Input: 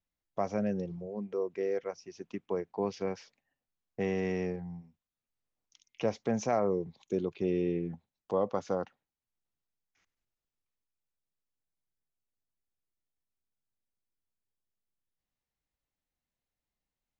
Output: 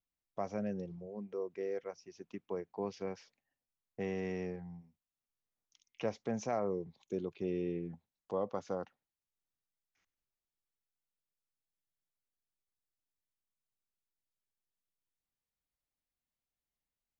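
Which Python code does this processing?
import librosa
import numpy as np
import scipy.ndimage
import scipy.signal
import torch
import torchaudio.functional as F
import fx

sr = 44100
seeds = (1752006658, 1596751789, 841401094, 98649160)

y = fx.dynamic_eq(x, sr, hz=1700.0, q=0.76, threshold_db=-56.0, ratio=4.0, max_db=4, at=(4.52, 6.09))
y = y * 10.0 ** (-6.0 / 20.0)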